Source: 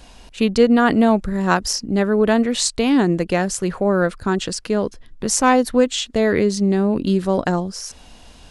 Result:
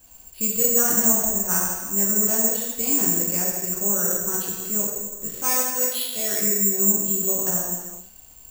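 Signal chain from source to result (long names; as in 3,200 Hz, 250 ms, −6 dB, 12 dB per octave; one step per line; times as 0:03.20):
0:05.26–0:06.42: spectral tilt +3 dB per octave
reverb whose tail is shaped and stops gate 460 ms falling, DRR −5 dB
bad sample-rate conversion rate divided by 6×, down filtered, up zero stuff
level −17.5 dB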